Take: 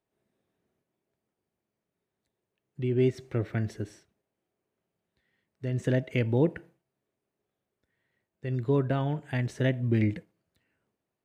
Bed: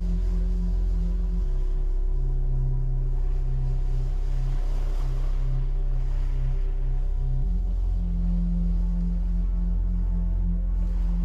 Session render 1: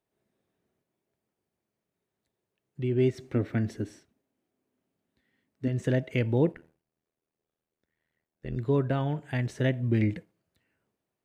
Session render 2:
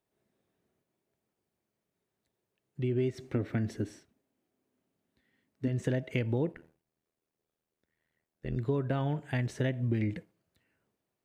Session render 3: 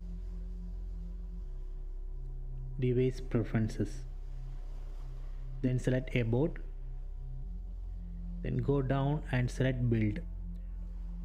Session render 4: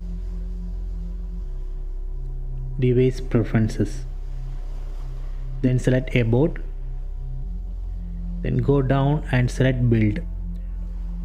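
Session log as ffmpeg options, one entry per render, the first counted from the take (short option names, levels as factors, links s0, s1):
-filter_complex "[0:a]asettb=1/sr,asplit=3[s0][s1][s2];[s0]atrim=end=3.204[s3];[s1]atrim=start=3.2:end=5.68,asetpts=PTS-STARTPTS,afade=t=in:d=0.004:c=qsin,afade=t=out:st=2.476:d=0.004:c=qsin,equalizer=f=260:w=4.7:g=14[s4];[s2]atrim=start=5.676[s5];[s3][s4]acrossfade=d=0.004:c1=hsin:c2=qsin[s6];[s6][s5]acrossfade=d=0.004:c1=qsin:c2=hsin,asplit=3[s7][s8][s9];[s7]afade=t=out:st=6.51:d=0.02[s10];[s8]tremolo=f=80:d=1,afade=t=in:st=6.51:d=0.02,afade=t=out:st=8.56:d=0.02[s11];[s9]afade=t=in:st=8.56:d=0.02[s12];[s10][s11][s12]amix=inputs=3:normalize=0"
-af "acompressor=threshold=0.0501:ratio=6"
-filter_complex "[1:a]volume=0.15[s0];[0:a][s0]amix=inputs=2:normalize=0"
-af "volume=3.76"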